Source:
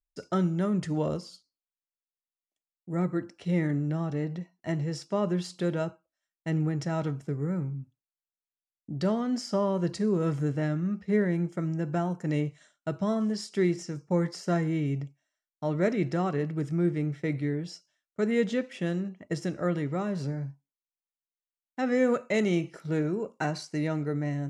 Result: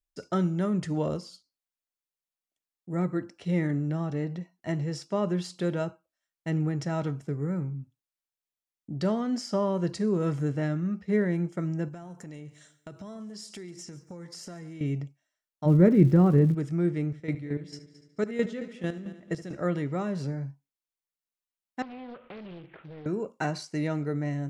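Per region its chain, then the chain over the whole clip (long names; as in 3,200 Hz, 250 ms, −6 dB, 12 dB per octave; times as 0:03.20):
0:11.88–0:14.81: high-shelf EQ 5,400 Hz +10 dB + downward compressor 8 to 1, threshold −39 dBFS + repeating echo 141 ms, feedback 42%, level −19 dB
0:15.65–0:16.53: spectral tilt −4.5 dB per octave + notch filter 670 Hz, Q 5.7 + surface crackle 340 per second −42 dBFS
0:17.06–0:19.55: square-wave tremolo 4.5 Hz, depth 65%, duty 30% + echo machine with several playback heads 73 ms, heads first and third, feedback 47%, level −16 dB
0:21.82–0:23.06: variable-slope delta modulation 16 kbit/s + downward compressor 4 to 1, threshold −43 dBFS + highs frequency-modulated by the lows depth 0.62 ms
whole clip: no processing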